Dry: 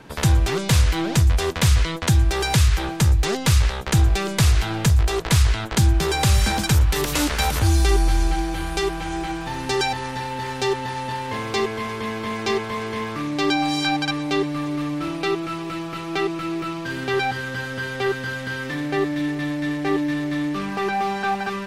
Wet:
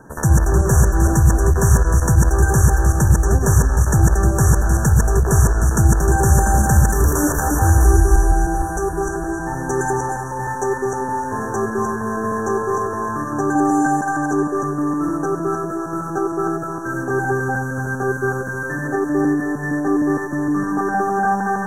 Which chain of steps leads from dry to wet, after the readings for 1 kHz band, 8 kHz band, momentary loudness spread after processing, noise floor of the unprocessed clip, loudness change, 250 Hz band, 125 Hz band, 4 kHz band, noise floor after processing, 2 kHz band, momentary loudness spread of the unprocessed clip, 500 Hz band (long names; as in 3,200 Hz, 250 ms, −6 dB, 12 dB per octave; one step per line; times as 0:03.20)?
+5.0 dB, +4.5 dB, 8 LU, −30 dBFS, +4.0 dB, +4.5 dB, +4.5 dB, −18.0 dB, −26 dBFS, +1.5 dB, 9 LU, +4.5 dB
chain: feedback delay that plays each chunk backwards 154 ms, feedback 47%, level −1 dB
brick-wall band-stop 1,800–5,600 Hz
level +1.5 dB